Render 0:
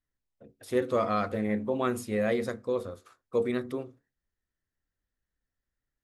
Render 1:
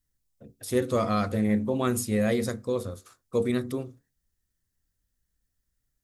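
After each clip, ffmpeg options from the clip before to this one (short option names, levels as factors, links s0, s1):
-af "bass=f=250:g=9,treble=f=4000:g=12"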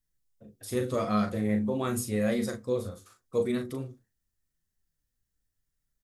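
-filter_complex "[0:a]flanger=delay=4.4:depth=6.3:regen=48:speed=0.84:shape=triangular,asplit=2[s0][s1];[s1]adelay=38,volume=0.447[s2];[s0][s2]amix=inputs=2:normalize=0"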